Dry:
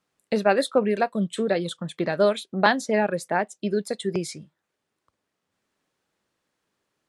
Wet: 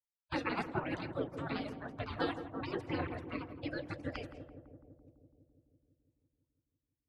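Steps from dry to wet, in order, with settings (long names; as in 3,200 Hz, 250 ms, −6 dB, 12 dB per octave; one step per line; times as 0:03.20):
rotating-speaker cabinet horn 8 Hz, later 1.1 Hz, at 0:03.32
gate on every frequency bin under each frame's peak −30 dB weak
high-pass filter 110 Hz 12 dB per octave
phase shifter 1 Hz, delay 4.9 ms, feedback 38%
low-pass filter 1,400 Hz 6 dB per octave
spectral tilt −3.5 dB per octave
on a send: feedback echo with a low-pass in the loop 167 ms, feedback 77%, low-pass 960 Hz, level −9 dB
on the sum: level +14 dB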